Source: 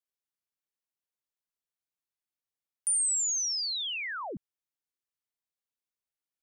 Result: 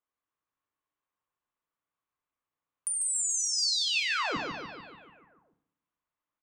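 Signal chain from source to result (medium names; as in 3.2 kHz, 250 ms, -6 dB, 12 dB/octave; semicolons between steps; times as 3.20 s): local Wiener filter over 9 samples; peaking EQ 1.1 kHz +11 dB 0.41 oct; in parallel at -1 dB: peak limiter -31.5 dBFS, peak gain reduction 8 dB; on the sum: compression, threshold -29 dBFS, peak gain reduction 6 dB; 3.47–4.00 s: cabinet simulation 150–5500 Hz, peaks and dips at 150 Hz +6 dB, 450 Hz +8 dB, 2.5 kHz +7 dB, 4.6 kHz +5 dB; on a send: feedback delay 146 ms, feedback 59%, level -4 dB; on the sum: FDN reverb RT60 0.63 s, low-frequency decay 1.5×, high-frequency decay 0.85×, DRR 8 dB; trim -1.5 dB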